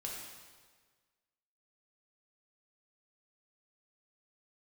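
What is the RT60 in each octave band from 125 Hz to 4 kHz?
1.6 s, 1.5 s, 1.6 s, 1.5 s, 1.4 s, 1.4 s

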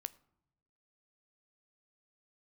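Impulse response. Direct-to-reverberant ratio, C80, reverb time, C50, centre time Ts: 14.5 dB, 23.5 dB, no single decay rate, 21.0 dB, 2 ms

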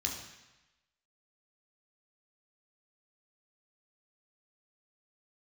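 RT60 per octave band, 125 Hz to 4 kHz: 1.0 s, 0.95 s, 0.95 s, 1.1 s, 1.1 s, 1.1 s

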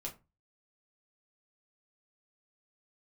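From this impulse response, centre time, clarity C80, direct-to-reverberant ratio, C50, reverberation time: 14 ms, 21.0 dB, -1.5 dB, 14.5 dB, 0.25 s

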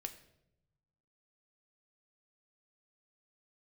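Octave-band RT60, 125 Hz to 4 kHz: 1.7 s, 1.3 s, 0.95 s, 0.70 s, 0.60 s, 0.60 s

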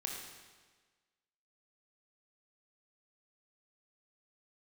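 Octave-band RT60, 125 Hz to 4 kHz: 1.3 s, 1.4 s, 1.4 s, 1.4 s, 1.4 s, 1.3 s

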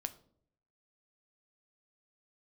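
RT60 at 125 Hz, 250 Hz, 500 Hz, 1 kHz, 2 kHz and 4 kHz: 0.90 s, 0.80 s, 0.75 s, 0.50 s, 0.35 s, 0.35 s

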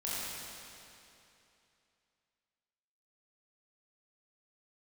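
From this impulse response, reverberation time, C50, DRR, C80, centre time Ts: 2.8 s, -5.0 dB, -9.0 dB, -3.5 dB, 197 ms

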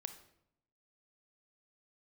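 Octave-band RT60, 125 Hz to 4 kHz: 1.0 s, 0.95 s, 0.80 s, 0.70 s, 0.60 s, 0.55 s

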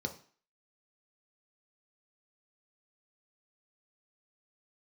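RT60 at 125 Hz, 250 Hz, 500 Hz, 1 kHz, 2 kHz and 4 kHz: 0.35 s, 0.45 s, 0.40 s, 0.45 s, 0.45 s, 0.45 s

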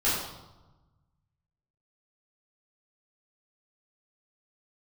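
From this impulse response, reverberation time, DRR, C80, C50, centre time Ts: 1.1 s, -11.0 dB, 3.5 dB, 1.0 dB, 66 ms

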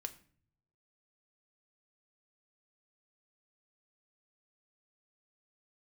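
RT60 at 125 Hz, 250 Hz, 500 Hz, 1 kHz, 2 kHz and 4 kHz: 1.2 s, 0.85 s, 0.50 s, 0.45 s, 0.45 s, 0.35 s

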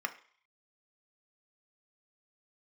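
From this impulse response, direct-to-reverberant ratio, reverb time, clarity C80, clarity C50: 6.5 dB, 0.50 s, 18.5 dB, 14.5 dB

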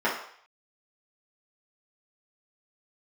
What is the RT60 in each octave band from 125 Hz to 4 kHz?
0.40 s, 0.40 s, 0.55 s, 0.65 s, 0.65 s, 0.65 s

